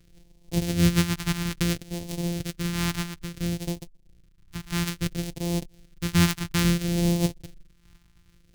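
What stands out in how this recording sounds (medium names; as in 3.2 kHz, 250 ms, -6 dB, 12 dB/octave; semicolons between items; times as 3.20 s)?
a buzz of ramps at a fixed pitch in blocks of 256 samples; phasing stages 2, 0.59 Hz, lowest notch 530–1300 Hz; random flutter of the level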